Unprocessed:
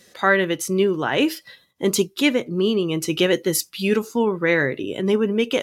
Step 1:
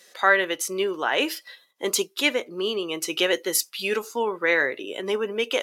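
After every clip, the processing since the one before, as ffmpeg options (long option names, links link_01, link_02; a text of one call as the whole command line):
ffmpeg -i in.wav -af "highpass=520" out.wav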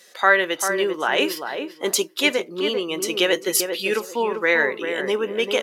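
ffmpeg -i in.wav -filter_complex "[0:a]asplit=2[link_01][link_02];[link_02]adelay=394,lowpass=frequency=1200:poles=1,volume=-5.5dB,asplit=2[link_03][link_04];[link_04]adelay=394,lowpass=frequency=1200:poles=1,volume=0.24,asplit=2[link_05][link_06];[link_06]adelay=394,lowpass=frequency=1200:poles=1,volume=0.24[link_07];[link_01][link_03][link_05][link_07]amix=inputs=4:normalize=0,volume=2.5dB" out.wav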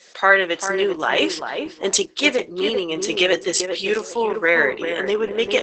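ffmpeg -i in.wav -af "volume=2.5dB" -ar 48000 -c:a libopus -b:a 10k out.opus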